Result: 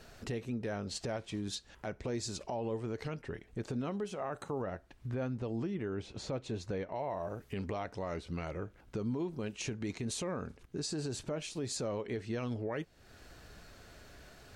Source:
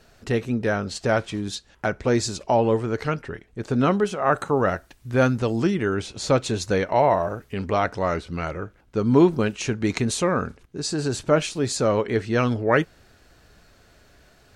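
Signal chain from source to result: compression 2.5:1, threshold -39 dBFS, peak gain reduction 18 dB; dynamic bell 1.4 kHz, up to -6 dB, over -54 dBFS, Q 2.2; peak limiter -28 dBFS, peak gain reduction 9 dB; 4.62–6.95 s: low-pass 2.1 kHz 6 dB/octave

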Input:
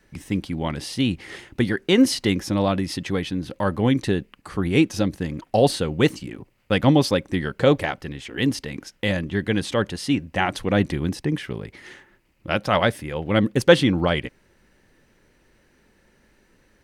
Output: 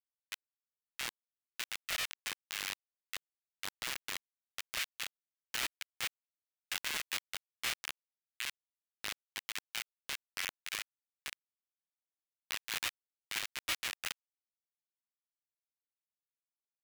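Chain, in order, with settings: Schmitt trigger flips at -15.5 dBFS; ladder high-pass 1.8 kHz, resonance 35%; polarity switched at an audio rate 320 Hz; trim +5.5 dB

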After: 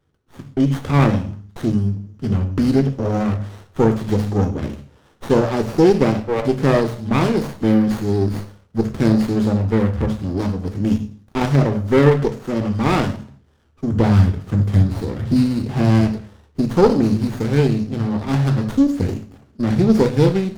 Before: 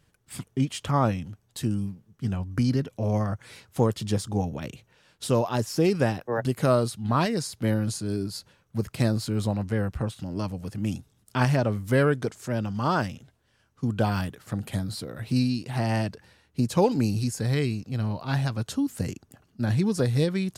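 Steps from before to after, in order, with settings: 13.92–16.01 s: bass shelf 160 Hz +11.5 dB; level rider gain up to 9.5 dB; reverberation RT60 0.50 s, pre-delay 3 ms, DRR 5 dB; sliding maximum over 17 samples; trim -7.5 dB

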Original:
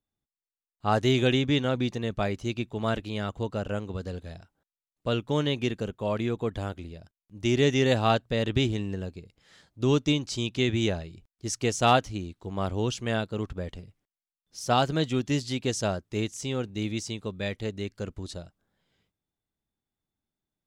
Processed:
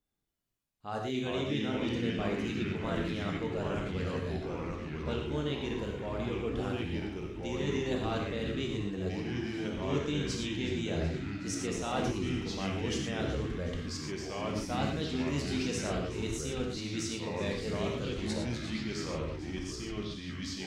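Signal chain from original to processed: reverse; compression 6:1, threshold -35 dBFS, peak gain reduction 17.5 dB; reverse; feedback echo behind a high-pass 372 ms, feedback 64%, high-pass 1.4 kHz, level -16 dB; gated-style reverb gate 140 ms flat, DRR 0.5 dB; ever faster or slower copies 239 ms, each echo -3 st, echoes 3

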